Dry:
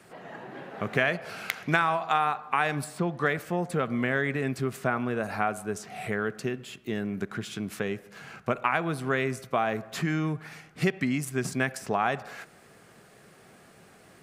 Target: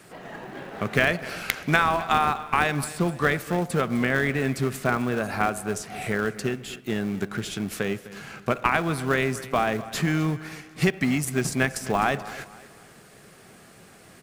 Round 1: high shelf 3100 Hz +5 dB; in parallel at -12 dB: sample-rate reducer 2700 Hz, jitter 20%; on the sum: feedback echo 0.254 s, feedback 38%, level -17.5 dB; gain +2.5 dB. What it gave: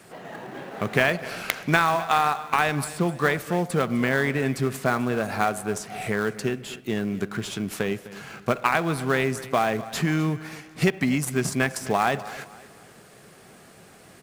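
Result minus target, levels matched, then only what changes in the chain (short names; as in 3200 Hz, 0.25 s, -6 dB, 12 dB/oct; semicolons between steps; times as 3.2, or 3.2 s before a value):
sample-rate reducer: distortion -9 dB
change: sample-rate reducer 1000 Hz, jitter 20%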